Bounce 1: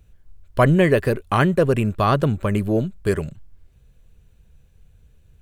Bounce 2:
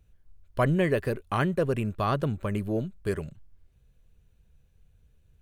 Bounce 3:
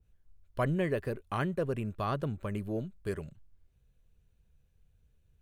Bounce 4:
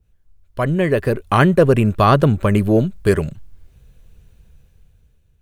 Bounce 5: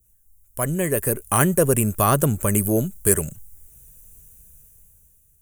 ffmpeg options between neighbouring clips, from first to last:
-af "bandreject=f=7.6k:w=16,volume=-8.5dB"
-af "adynamicequalizer=threshold=0.0126:dfrequency=1700:dqfactor=0.7:tfrequency=1700:tqfactor=0.7:attack=5:release=100:ratio=0.375:range=2:mode=cutabove:tftype=highshelf,volume=-6dB"
-af "dynaudnorm=f=290:g=7:m=13dB,volume=7dB"
-af "aexciter=amount=13:drive=8.6:freq=6.6k,volume=-6dB"

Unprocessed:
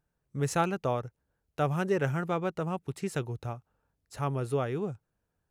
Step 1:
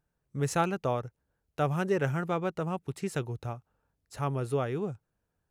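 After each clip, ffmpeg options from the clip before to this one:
-af anull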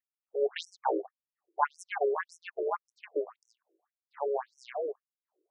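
-af "adynamicsmooth=sensitivity=6.5:basefreq=1.1k,aeval=exprs='val(0)*sin(2*PI*280*n/s)':c=same,afftfilt=real='re*between(b*sr/1024,410*pow(7900/410,0.5+0.5*sin(2*PI*1.8*pts/sr))/1.41,410*pow(7900/410,0.5+0.5*sin(2*PI*1.8*pts/sr))*1.41)':imag='im*between(b*sr/1024,410*pow(7900/410,0.5+0.5*sin(2*PI*1.8*pts/sr))/1.41,410*pow(7900/410,0.5+0.5*sin(2*PI*1.8*pts/sr))*1.41)':win_size=1024:overlap=0.75,volume=9dB"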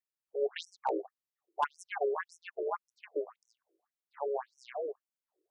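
-af "asoftclip=type=hard:threshold=-18dB,volume=-3dB"

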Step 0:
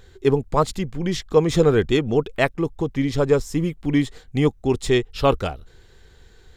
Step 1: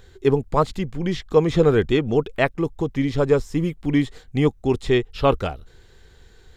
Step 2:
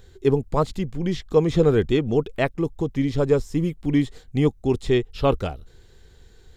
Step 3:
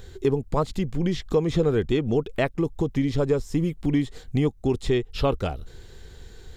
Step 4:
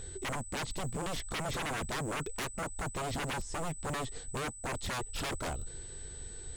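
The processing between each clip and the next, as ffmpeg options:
-filter_complex "[0:a]acrossover=split=4000[a][b];[b]acompressor=threshold=-45dB:ratio=4:attack=1:release=60[c];[a][c]amix=inputs=2:normalize=0"
-af "equalizer=f=1.5k:t=o:w=2.5:g=-5"
-af "acompressor=threshold=-30dB:ratio=2.5,volume=6.5dB"
-af "aresample=22050,aresample=44100,aeval=exprs='val(0)+0.00708*sin(2*PI*8000*n/s)':c=same,aeval=exprs='0.0422*(abs(mod(val(0)/0.0422+3,4)-2)-1)':c=same,volume=-3dB"

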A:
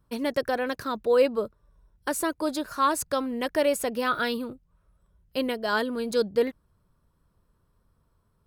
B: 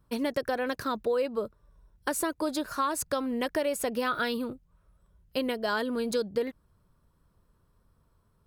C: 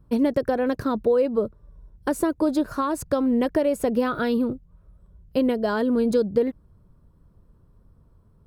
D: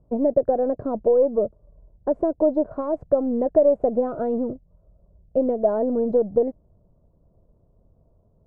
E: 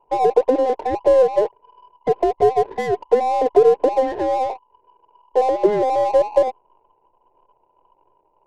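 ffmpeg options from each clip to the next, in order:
-af "acompressor=threshold=-26dB:ratio=6,volume=1dB"
-af "tiltshelf=f=820:g=8,volume=4dB"
-af "aeval=exprs='if(lt(val(0),0),0.708*val(0),val(0))':c=same,lowpass=f=650:t=q:w=4.3,volume=-3dB"
-af "afftfilt=real='real(if(between(b,1,1008),(2*floor((b-1)/48)+1)*48-b,b),0)':imag='imag(if(between(b,1,1008),(2*floor((b-1)/48)+1)*48-b,b),0)*if(between(b,1,1008),-1,1)':win_size=2048:overlap=0.75,adynamicsmooth=sensitivity=7.5:basefreq=550,volume=4dB"

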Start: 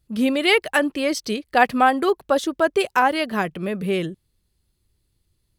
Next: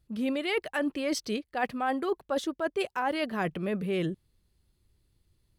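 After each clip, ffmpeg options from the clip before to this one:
-af "highshelf=f=4k:g=-5.5,areverse,acompressor=threshold=-27dB:ratio=6,areverse"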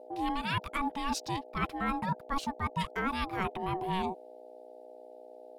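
-af "aeval=exprs='val(0)+0.00501*(sin(2*PI*60*n/s)+sin(2*PI*2*60*n/s)/2+sin(2*PI*3*60*n/s)/3+sin(2*PI*4*60*n/s)/4+sin(2*PI*5*60*n/s)/5)':c=same,aeval=exprs='val(0)*sin(2*PI*560*n/s)':c=same"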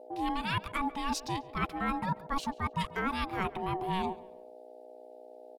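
-filter_complex "[0:a]asplit=2[a][b];[b]adelay=139,lowpass=f=3.7k:p=1,volume=-19dB,asplit=2[c][d];[d]adelay=139,lowpass=f=3.7k:p=1,volume=0.36,asplit=2[e][f];[f]adelay=139,lowpass=f=3.7k:p=1,volume=0.36[g];[a][c][e][g]amix=inputs=4:normalize=0"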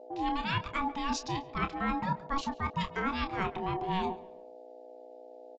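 -filter_complex "[0:a]asplit=2[a][b];[b]adelay=28,volume=-9dB[c];[a][c]amix=inputs=2:normalize=0,aresample=16000,aresample=44100"

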